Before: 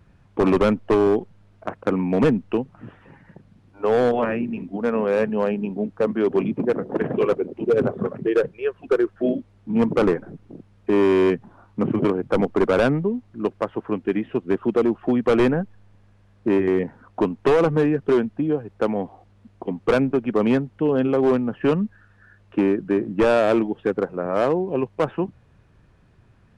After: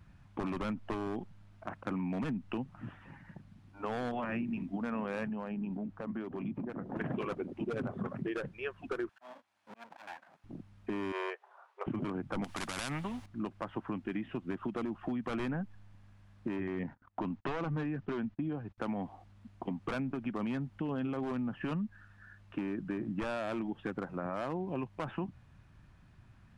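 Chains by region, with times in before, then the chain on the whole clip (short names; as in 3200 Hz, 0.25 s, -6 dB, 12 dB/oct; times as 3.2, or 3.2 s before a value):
5.27–6.97 high shelf 2600 Hz -8.5 dB + compressor 5:1, threshold -28 dBFS
9.09–10.44 minimum comb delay 1.2 ms + HPF 650 Hz + auto swell 0.615 s
11.12–11.87 brick-wall FIR high-pass 380 Hz + high shelf 3400 Hz -8.5 dB
12.44–13.26 high shelf 3500 Hz +9.5 dB + spectral compressor 2:1
16.56–18.78 gate -46 dBFS, range -41 dB + upward compressor, threshold -38 dBFS + air absorption 92 m
whole clip: bell 450 Hz -12.5 dB 0.68 oct; limiter -20.5 dBFS; compressor, threshold -29 dBFS; gain -3 dB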